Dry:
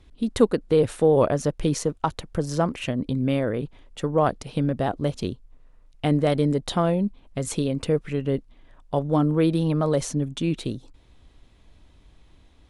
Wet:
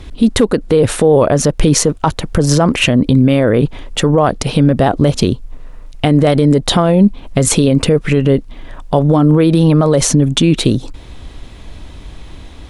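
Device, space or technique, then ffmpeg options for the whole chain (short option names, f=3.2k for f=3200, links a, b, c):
loud club master: -af "acompressor=threshold=-30dB:ratio=1.5,asoftclip=type=hard:threshold=-13.5dB,alimiter=level_in=22.5dB:limit=-1dB:release=50:level=0:latency=1,volume=-1dB"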